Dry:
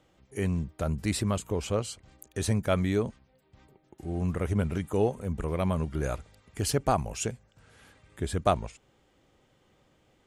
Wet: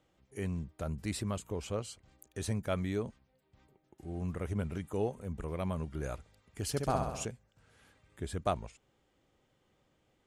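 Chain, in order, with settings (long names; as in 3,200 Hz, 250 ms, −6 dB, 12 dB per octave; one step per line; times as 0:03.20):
0:06.70–0:07.25: flutter between parallel walls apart 11.3 metres, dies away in 0.9 s
level −7.5 dB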